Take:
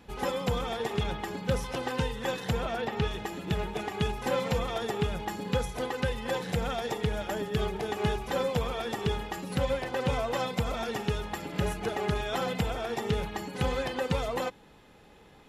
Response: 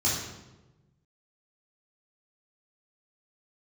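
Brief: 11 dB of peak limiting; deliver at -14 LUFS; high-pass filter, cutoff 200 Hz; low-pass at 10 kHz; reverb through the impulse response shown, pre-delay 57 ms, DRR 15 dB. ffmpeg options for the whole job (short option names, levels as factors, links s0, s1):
-filter_complex "[0:a]highpass=200,lowpass=10000,alimiter=level_in=1.33:limit=0.0631:level=0:latency=1,volume=0.75,asplit=2[s0][s1];[1:a]atrim=start_sample=2205,adelay=57[s2];[s1][s2]afir=irnorm=-1:irlink=0,volume=0.0562[s3];[s0][s3]amix=inputs=2:normalize=0,volume=12.6"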